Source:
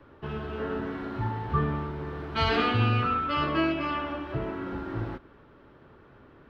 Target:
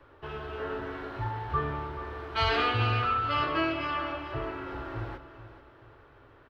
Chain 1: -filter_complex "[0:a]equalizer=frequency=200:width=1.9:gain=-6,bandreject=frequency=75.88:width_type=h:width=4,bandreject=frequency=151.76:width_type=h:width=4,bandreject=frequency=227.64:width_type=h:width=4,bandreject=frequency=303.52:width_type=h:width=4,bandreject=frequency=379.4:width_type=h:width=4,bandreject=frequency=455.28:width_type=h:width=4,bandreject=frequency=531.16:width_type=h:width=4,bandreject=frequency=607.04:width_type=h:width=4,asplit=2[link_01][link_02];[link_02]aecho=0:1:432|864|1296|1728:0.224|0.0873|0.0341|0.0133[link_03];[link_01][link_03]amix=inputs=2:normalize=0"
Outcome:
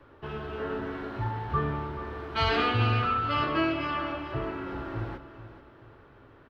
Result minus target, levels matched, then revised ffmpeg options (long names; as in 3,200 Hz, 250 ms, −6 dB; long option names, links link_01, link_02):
250 Hz band +3.0 dB
-filter_complex "[0:a]equalizer=frequency=200:width=1.9:gain=-17.5,bandreject=frequency=75.88:width_type=h:width=4,bandreject=frequency=151.76:width_type=h:width=4,bandreject=frequency=227.64:width_type=h:width=4,bandreject=frequency=303.52:width_type=h:width=4,bandreject=frequency=379.4:width_type=h:width=4,bandreject=frequency=455.28:width_type=h:width=4,bandreject=frequency=531.16:width_type=h:width=4,bandreject=frequency=607.04:width_type=h:width=4,asplit=2[link_01][link_02];[link_02]aecho=0:1:432|864|1296|1728:0.224|0.0873|0.0341|0.0133[link_03];[link_01][link_03]amix=inputs=2:normalize=0"